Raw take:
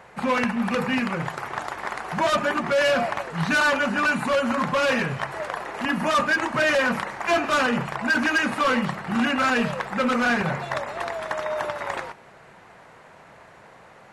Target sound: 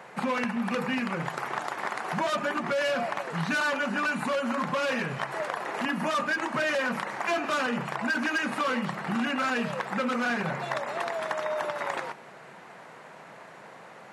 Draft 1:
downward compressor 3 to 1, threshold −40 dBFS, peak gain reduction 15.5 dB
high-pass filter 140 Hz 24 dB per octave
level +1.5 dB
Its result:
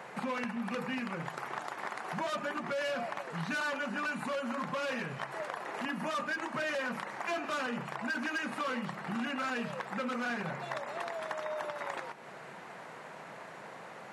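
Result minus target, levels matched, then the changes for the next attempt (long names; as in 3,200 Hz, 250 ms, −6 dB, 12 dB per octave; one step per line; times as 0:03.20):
downward compressor: peak gain reduction +7 dB
change: downward compressor 3 to 1, threshold −29.5 dBFS, peak gain reduction 8.5 dB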